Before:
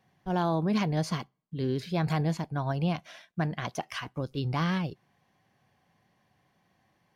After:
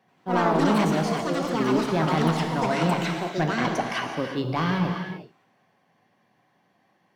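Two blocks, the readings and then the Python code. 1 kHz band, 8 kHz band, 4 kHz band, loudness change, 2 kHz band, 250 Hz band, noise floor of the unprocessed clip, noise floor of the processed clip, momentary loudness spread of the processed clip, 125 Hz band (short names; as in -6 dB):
+9.0 dB, +7.5 dB, +7.0 dB, +6.5 dB, +9.0 dB, +6.5 dB, -72 dBFS, -67 dBFS, 7 LU, +2.0 dB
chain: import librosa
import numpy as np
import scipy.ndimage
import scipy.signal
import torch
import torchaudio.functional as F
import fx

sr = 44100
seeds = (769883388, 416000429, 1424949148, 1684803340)

y = scipy.signal.sosfilt(scipy.signal.butter(2, 200.0, 'highpass', fs=sr, output='sos'), x)
y = fx.high_shelf(y, sr, hz=3500.0, db=-8.0)
y = fx.rider(y, sr, range_db=10, speed_s=2.0)
y = 10.0 ** (-20.5 / 20.0) * np.tanh(y / 10.0 ** (-20.5 / 20.0))
y = fx.quant_float(y, sr, bits=6)
y = fx.echo_pitch(y, sr, ms=83, semitones=5, count=2, db_per_echo=-3.0)
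y = fx.rev_gated(y, sr, seeds[0], gate_ms=400, shape='flat', drr_db=3.5)
y = F.gain(torch.from_numpy(y), 6.0).numpy()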